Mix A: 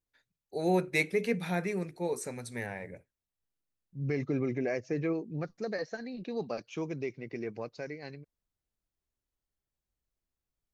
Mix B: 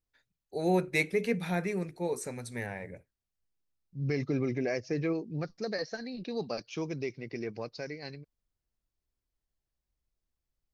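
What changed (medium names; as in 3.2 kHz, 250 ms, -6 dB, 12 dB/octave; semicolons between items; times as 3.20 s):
second voice: add resonant low-pass 5.1 kHz, resonance Q 3.1; master: add bass shelf 76 Hz +6.5 dB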